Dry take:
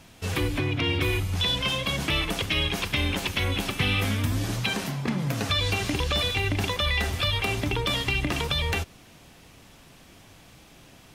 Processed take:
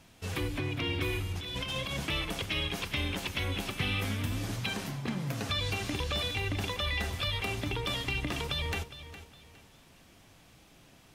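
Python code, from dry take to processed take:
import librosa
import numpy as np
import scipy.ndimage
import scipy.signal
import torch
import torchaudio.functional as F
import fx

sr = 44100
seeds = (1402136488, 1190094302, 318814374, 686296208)

p1 = fx.over_compress(x, sr, threshold_db=-28.0, ratio=-0.5, at=(1.31, 2.0))
p2 = p1 + fx.echo_feedback(p1, sr, ms=411, feedback_pct=31, wet_db=-14.0, dry=0)
y = p2 * librosa.db_to_amplitude(-7.0)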